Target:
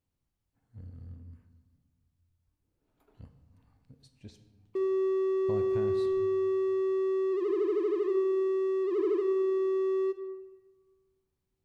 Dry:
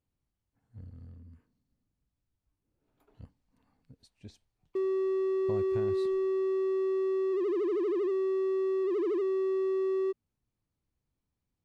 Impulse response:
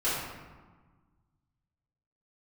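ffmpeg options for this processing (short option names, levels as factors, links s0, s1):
-filter_complex "[0:a]asplit=2[s0][s1];[1:a]atrim=start_sample=2205,adelay=19[s2];[s1][s2]afir=irnorm=-1:irlink=0,volume=0.126[s3];[s0][s3]amix=inputs=2:normalize=0"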